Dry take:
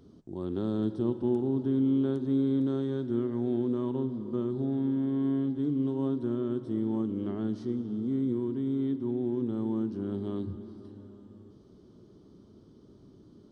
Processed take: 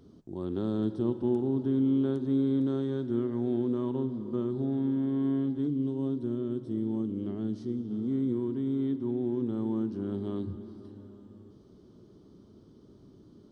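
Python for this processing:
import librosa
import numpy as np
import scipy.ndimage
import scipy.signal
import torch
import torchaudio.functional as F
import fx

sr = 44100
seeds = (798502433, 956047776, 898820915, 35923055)

y = fx.peak_eq(x, sr, hz=1200.0, db=-7.5, octaves=2.3, at=(5.67, 7.91))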